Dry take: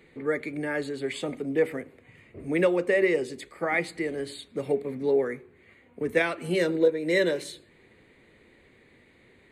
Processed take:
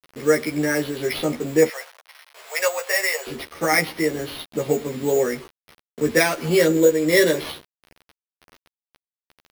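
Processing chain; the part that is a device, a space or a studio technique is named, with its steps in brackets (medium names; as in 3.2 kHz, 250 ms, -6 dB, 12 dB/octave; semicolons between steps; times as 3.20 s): early 8-bit sampler (sample-rate reducer 7.4 kHz, jitter 0%; bit crusher 8-bit); 1.68–3.27 s: inverse Chebyshev high-pass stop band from 320 Hz, stop band 40 dB; doubling 13 ms -2 dB; trim +5.5 dB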